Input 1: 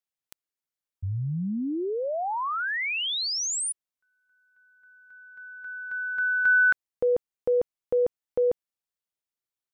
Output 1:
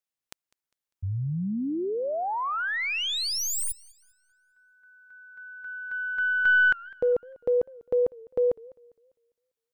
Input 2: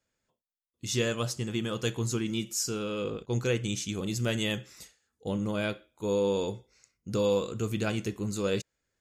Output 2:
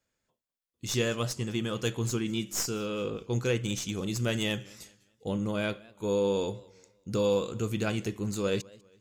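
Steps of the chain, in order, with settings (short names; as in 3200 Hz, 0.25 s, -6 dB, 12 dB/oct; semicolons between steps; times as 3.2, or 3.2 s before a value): tracing distortion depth 0.028 ms; warbling echo 0.2 s, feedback 36%, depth 147 cents, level -23.5 dB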